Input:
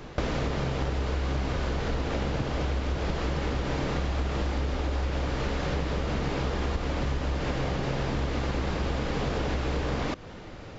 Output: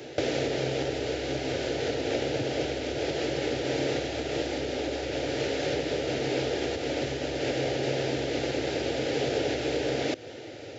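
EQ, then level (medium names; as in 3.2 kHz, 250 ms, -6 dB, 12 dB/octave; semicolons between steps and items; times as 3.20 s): high-pass 120 Hz 24 dB/octave; static phaser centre 450 Hz, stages 4; +6.0 dB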